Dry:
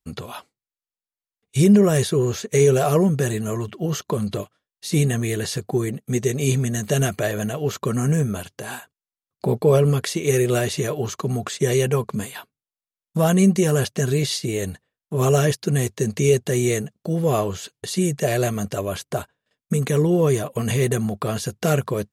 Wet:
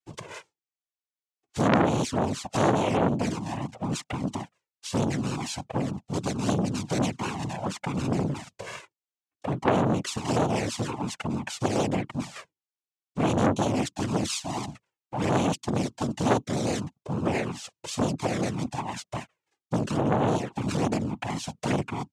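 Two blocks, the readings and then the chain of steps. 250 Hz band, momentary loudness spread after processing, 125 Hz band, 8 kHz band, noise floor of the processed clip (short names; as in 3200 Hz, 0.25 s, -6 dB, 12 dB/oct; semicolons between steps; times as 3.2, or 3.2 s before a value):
-5.0 dB, 13 LU, -9.0 dB, -9.0 dB, under -85 dBFS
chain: noise vocoder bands 4; envelope flanger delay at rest 2.7 ms, full sweep at -14.5 dBFS; core saturation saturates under 1800 Hz; gain -2 dB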